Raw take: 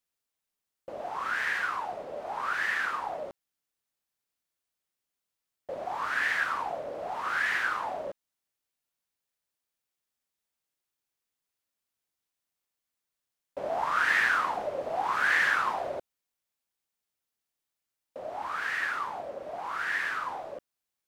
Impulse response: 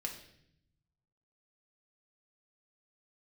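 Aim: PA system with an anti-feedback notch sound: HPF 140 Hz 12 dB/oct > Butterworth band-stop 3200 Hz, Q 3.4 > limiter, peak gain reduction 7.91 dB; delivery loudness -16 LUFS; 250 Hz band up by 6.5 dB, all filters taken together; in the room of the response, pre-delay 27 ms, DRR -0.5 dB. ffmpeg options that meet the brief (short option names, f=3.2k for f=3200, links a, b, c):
-filter_complex "[0:a]equalizer=f=250:t=o:g=9,asplit=2[a][b];[1:a]atrim=start_sample=2205,adelay=27[c];[b][c]afir=irnorm=-1:irlink=0,volume=1dB[d];[a][d]amix=inputs=2:normalize=0,highpass=140,asuperstop=centerf=3200:order=8:qfactor=3.4,volume=12.5dB,alimiter=limit=-6dB:level=0:latency=1"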